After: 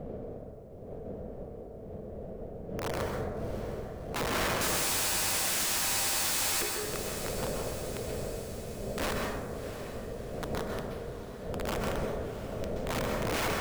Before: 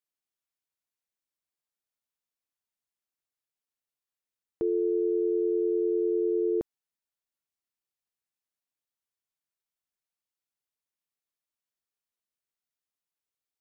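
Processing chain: single-diode clipper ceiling -26 dBFS; wind noise 200 Hz -44 dBFS; high-order bell 540 Hz +13.5 dB 1 oct; hum notches 60/120/180/240/300/360/420 Hz; in parallel at +2.5 dB: compression 8:1, threshold -49 dBFS, peak gain reduction 31 dB; on the sum: integer overflow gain 31.5 dB; on a send: echo that smears into a reverb 686 ms, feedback 58%, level -11 dB; on the sum: plate-style reverb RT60 1.3 s, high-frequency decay 0.45×, pre-delay 115 ms, DRR 0 dB; trim +4 dB

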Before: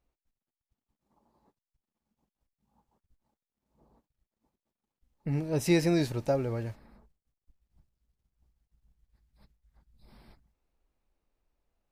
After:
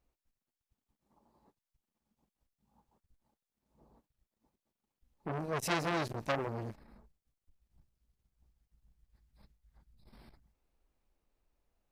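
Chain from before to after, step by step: transformer saturation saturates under 2.4 kHz

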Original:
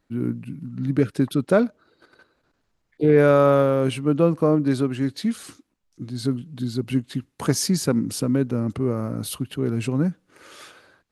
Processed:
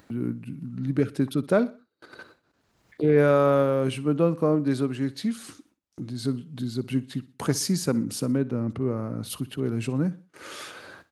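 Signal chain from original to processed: 8.22–9.30 s: low-pass 3.8 kHz 6 dB/octave; gate with hold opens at -45 dBFS; high-pass 70 Hz; upward compressor, threshold -26 dBFS; feedback delay 61 ms, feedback 38%, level -19 dB; trim -3.5 dB

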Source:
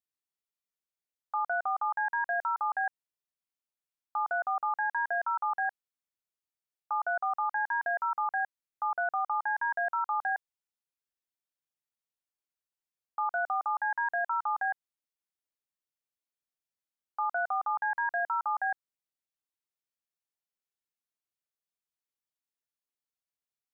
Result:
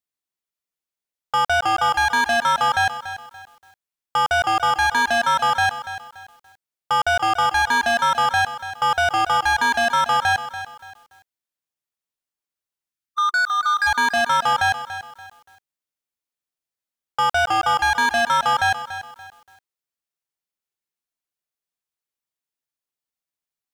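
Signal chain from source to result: time-frequency box 12.93–13.87 s, 370–1200 Hz -19 dB; waveshaping leveller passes 3; bit-crushed delay 287 ms, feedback 35%, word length 9-bit, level -12 dB; trim +8.5 dB

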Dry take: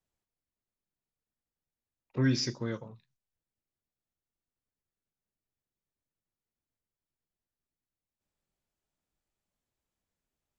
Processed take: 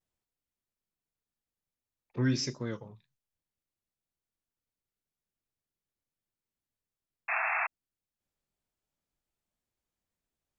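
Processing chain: vibrato 1.3 Hz 92 cents; painted sound noise, 7.28–7.67 s, 630–2700 Hz -29 dBFS; trim -1.5 dB

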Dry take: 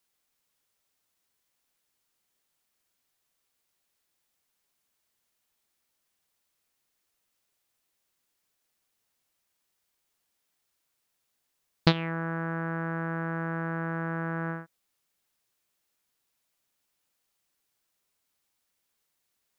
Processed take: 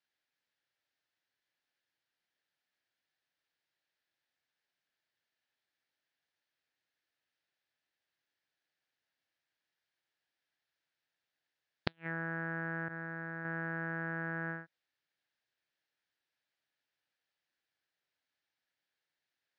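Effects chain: 12.88–13.45 s: expander -27 dBFS; cabinet simulation 110–4800 Hz, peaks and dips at 210 Hz -9 dB, 420 Hz -4 dB, 1.1 kHz -7 dB, 1.7 kHz +8 dB; inverted gate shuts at -11 dBFS, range -35 dB; trim -6 dB

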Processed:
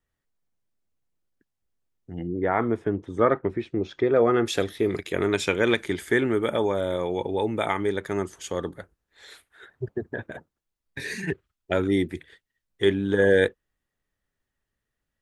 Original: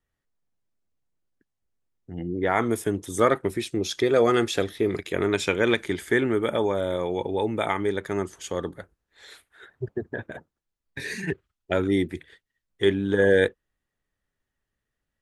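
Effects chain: 2.27–4.46 s: low-pass 1.7 kHz 12 dB/octave

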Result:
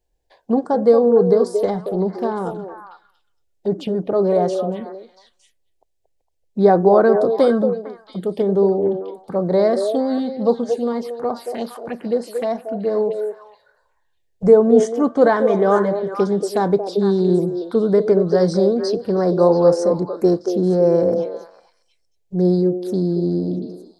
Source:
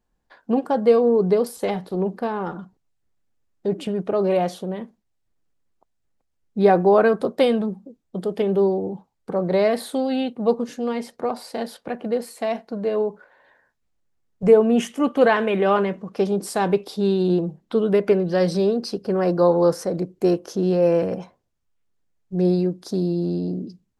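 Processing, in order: touch-sensitive phaser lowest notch 210 Hz, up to 2.7 kHz, full sweep at -21 dBFS; repeats whose band climbs or falls 228 ms, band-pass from 490 Hz, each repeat 1.4 oct, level -4 dB; trim +3 dB

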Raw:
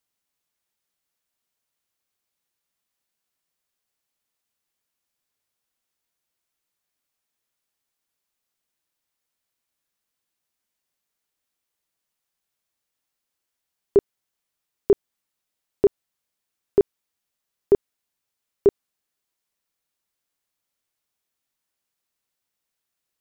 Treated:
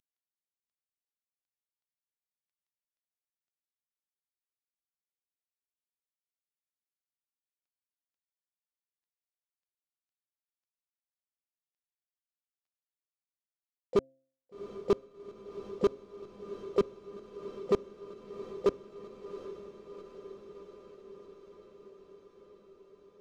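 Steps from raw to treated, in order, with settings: CVSD coder 32 kbps; de-hum 266 Hz, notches 2; harmony voices -12 st -12 dB, +4 st -17 dB; overload inside the chain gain 12.5 dB; on a send: echo that smears into a reverb 762 ms, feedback 72%, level -12 dB; on the sum: trim -6.5 dB

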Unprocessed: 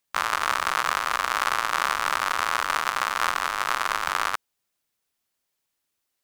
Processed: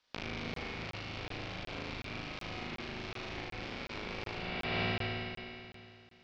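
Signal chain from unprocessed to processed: spring tank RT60 2.6 s, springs 51 ms, chirp 55 ms, DRR 3 dB; peak limiter -12.5 dBFS, peak gain reduction 8 dB; differentiator; ring modulator 1.1 kHz; steep low-pass 5.1 kHz 36 dB/octave; compressor with a negative ratio -55 dBFS, ratio -1; treble shelf 2.6 kHz -10 dB; flutter echo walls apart 6.5 m, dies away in 1.2 s; crackling interface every 0.37 s, samples 1024, zero, from 0.54 s; trim +13 dB

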